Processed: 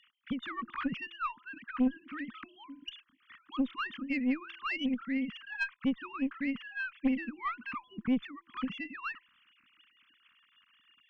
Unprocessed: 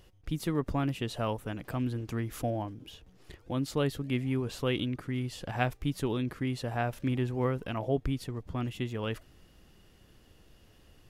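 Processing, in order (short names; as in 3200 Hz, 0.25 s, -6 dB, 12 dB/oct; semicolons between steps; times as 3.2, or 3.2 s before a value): sine-wave speech; elliptic band-stop 240–1200 Hz, stop band 50 dB; de-hum 338.4 Hz, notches 3; tube stage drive 27 dB, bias 0.45; gain +7 dB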